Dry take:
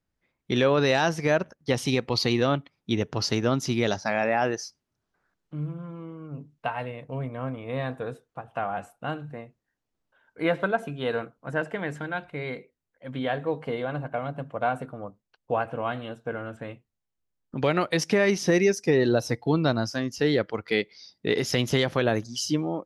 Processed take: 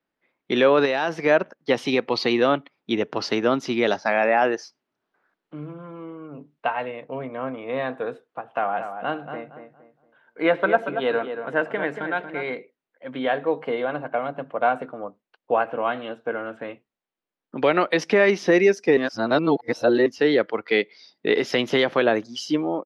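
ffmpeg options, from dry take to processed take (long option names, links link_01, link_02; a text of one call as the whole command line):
ffmpeg -i in.wav -filter_complex "[0:a]asettb=1/sr,asplit=3[link_01][link_02][link_03];[link_01]atrim=end=0.854[link_04];[link_02]atrim=start=0.85:end=1.26,asetpts=PTS-STARTPTS,afade=type=in:duration=0.004:curve=qsin,afade=type=out:start_time=0.406:duration=0.004:curve=qsin,acompressor=threshold=-23dB:ratio=5:attack=3.2:release=140:knee=1:detection=peak[link_05];[link_03]atrim=start=1.256[link_06];[link_04][link_05]acrossfade=duration=0.004:curve1=hsin:curve2=qsin[link_07];[link_07][link_06]acrossfade=duration=0.004:curve1=qsin:curve2=hsin,asplit=3[link_08][link_09][link_10];[link_08]afade=type=out:start_time=8.62:duration=0.02[link_11];[link_09]asplit=2[link_12][link_13];[link_13]adelay=232,lowpass=frequency=2000:poles=1,volume=-8dB,asplit=2[link_14][link_15];[link_15]adelay=232,lowpass=frequency=2000:poles=1,volume=0.32,asplit=2[link_16][link_17];[link_17]adelay=232,lowpass=frequency=2000:poles=1,volume=0.32,asplit=2[link_18][link_19];[link_19]adelay=232,lowpass=frequency=2000:poles=1,volume=0.32[link_20];[link_12][link_14][link_16][link_18][link_20]amix=inputs=5:normalize=0,afade=type=in:start_time=8.62:duration=0.02,afade=type=out:start_time=12.54:duration=0.02[link_21];[link_10]afade=type=in:start_time=12.54:duration=0.02[link_22];[link_11][link_21][link_22]amix=inputs=3:normalize=0,asplit=3[link_23][link_24][link_25];[link_23]atrim=end=18.972[link_26];[link_24]atrim=start=18.968:end=20.062,asetpts=PTS-STARTPTS,areverse[link_27];[link_25]atrim=start=20.058[link_28];[link_26][link_27]acrossfade=duration=0.004:curve1=hsin:curve2=hsin[link_29];[link_29][link_28]acrossfade=duration=0.004:curve1=hsin:curve2=hsin,acrossover=split=220 4000:gain=0.0708 1 0.126[link_30][link_31][link_32];[link_30][link_31][link_32]amix=inputs=3:normalize=0,volume=5.5dB" out.wav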